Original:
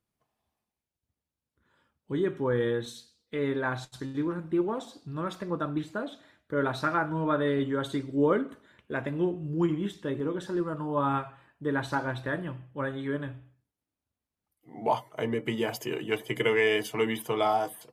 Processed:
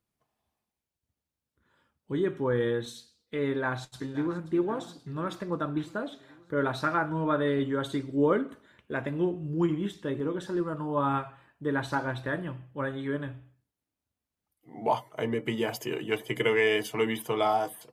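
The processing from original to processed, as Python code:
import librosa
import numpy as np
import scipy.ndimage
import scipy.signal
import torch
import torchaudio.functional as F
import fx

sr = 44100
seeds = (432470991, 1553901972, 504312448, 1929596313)

y = fx.echo_throw(x, sr, start_s=3.47, length_s=0.99, ms=530, feedback_pct=65, wet_db=-15.5)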